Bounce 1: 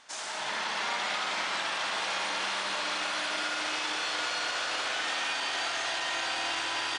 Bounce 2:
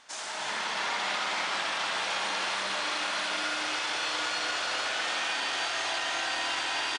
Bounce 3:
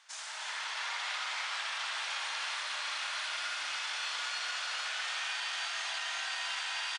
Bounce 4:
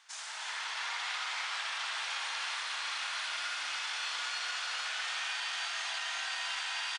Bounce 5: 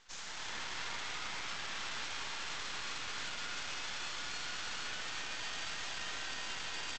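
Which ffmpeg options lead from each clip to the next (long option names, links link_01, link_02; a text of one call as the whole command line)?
ffmpeg -i in.wav -af "aecho=1:1:305:0.473" out.wav
ffmpeg -i in.wav -af "highpass=1100,volume=-4.5dB" out.wav
ffmpeg -i in.wav -af "bandreject=frequency=600:width=12" out.wav
ffmpeg -i in.wav -af "alimiter=level_in=6dB:limit=-24dB:level=0:latency=1:release=34,volume=-6dB,aresample=16000,aeval=exprs='max(val(0),0)':channel_layout=same,aresample=44100,volume=2dB" out.wav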